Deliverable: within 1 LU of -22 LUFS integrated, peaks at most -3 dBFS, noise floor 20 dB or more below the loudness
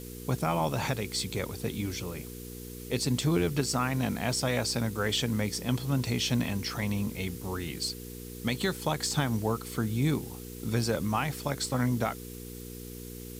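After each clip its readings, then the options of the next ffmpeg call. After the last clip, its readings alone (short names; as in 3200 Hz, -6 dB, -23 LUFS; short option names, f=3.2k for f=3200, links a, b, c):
hum 60 Hz; harmonics up to 480 Hz; hum level -41 dBFS; noise floor -43 dBFS; noise floor target -51 dBFS; loudness -30.5 LUFS; peak -15.0 dBFS; loudness target -22.0 LUFS
-> -af "bandreject=f=60:t=h:w=4,bandreject=f=120:t=h:w=4,bandreject=f=180:t=h:w=4,bandreject=f=240:t=h:w=4,bandreject=f=300:t=h:w=4,bandreject=f=360:t=h:w=4,bandreject=f=420:t=h:w=4,bandreject=f=480:t=h:w=4"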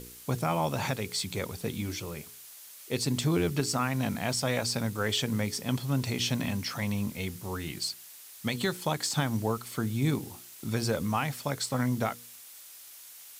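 hum none; noise floor -49 dBFS; noise floor target -51 dBFS
-> -af "afftdn=nr=6:nf=-49"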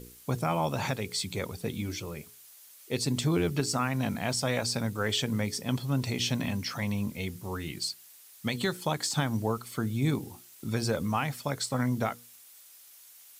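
noise floor -54 dBFS; loudness -31.0 LUFS; peak -15.5 dBFS; loudness target -22.0 LUFS
-> -af "volume=9dB"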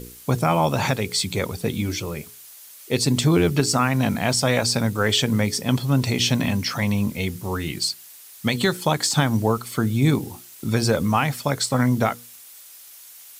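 loudness -22.0 LUFS; peak -6.5 dBFS; noise floor -45 dBFS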